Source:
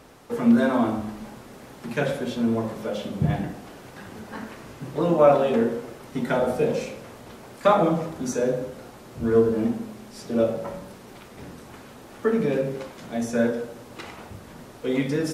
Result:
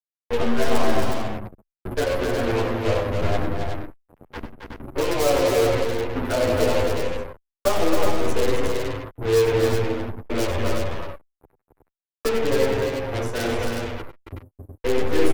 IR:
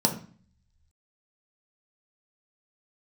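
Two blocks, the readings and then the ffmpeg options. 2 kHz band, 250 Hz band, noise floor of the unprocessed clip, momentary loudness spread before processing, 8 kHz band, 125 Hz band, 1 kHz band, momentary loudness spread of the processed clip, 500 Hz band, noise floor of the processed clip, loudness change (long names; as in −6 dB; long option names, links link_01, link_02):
+5.0 dB, −3.0 dB, −45 dBFS, 23 LU, +7.0 dB, +3.0 dB, +1.0 dB, 18 LU, +2.0 dB, below −85 dBFS, +0.5 dB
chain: -filter_complex "[0:a]afftdn=noise_reduction=33:noise_floor=-34,highpass=45,agate=range=-33dB:threshold=-45dB:ratio=3:detection=peak,acrossover=split=310|780|4600[link_01][link_02][link_03][link_04];[link_01]acompressor=threshold=-32dB:ratio=4[link_05];[link_02]acompressor=threshold=-28dB:ratio=4[link_06];[link_03]acompressor=threshold=-32dB:ratio=4[link_07];[link_04]acompressor=threshold=-55dB:ratio=4[link_08];[link_05][link_06][link_07][link_08]amix=inputs=4:normalize=0,firequalizer=gain_entry='entry(140,0);entry(330,10);entry(990,4);entry(1700,3);entry(3200,-21);entry(11000,15)':delay=0.05:min_phase=1,aeval=exprs='0.282*(cos(1*acos(clip(val(0)/0.282,-1,1)))-cos(1*PI/2))+0.0126*(cos(3*acos(clip(val(0)/0.282,-1,1)))-cos(3*PI/2))+0.0224*(cos(4*acos(clip(val(0)/0.282,-1,1)))-cos(4*PI/2))+0.0141*(cos(5*acos(clip(val(0)/0.282,-1,1)))-cos(5*PI/2))+0.02*(cos(8*acos(clip(val(0)/0.282,-1,1)))-cos(8*PI/2))':channel_layout=same,lowshelf=frequency=130:width_type=q:width=3:gain=8,acrossover=split=220|3900[link_09][link_10][link_11];[link_11]crystalizer=i=3.5:c=0[link_12];[link_09][link_10][link_12]amix=inputs=3:normalize=0,acrusher=bits=3:mix=0:aa=0.5,aecho=1:1:93|101|269|367:0.237|0.158|0.562|0.531,asplit=2[link_13][link_14];[link_14]adelay=9.8,afreqshift=-0.27[link_15];[link_13][link_15]amix=inputs=2:normalize=1"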